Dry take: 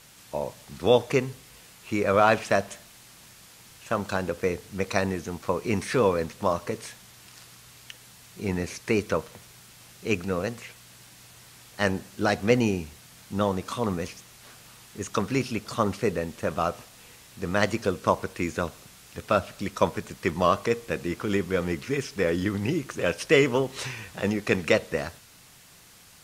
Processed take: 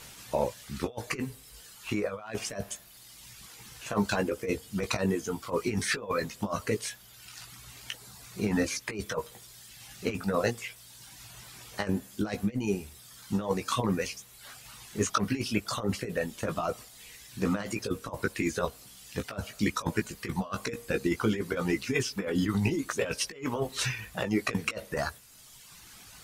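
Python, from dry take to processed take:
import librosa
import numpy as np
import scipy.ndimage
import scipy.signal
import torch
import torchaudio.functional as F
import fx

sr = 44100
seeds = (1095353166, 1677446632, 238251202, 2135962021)

y = fx.dereverb_blind(x, sr, rt60_s=1.4)
y = fx.over_compress(y, sr, threshold_db=-29.0, ratio=-0.5)
y = fx.chorus_voices(y, sr, voices=6, hz=0.21, base_ms=17, depth_ms=2.5, mix_pct=35)
y = F.gain(torch.from_numpy(y), 3.5).numpy()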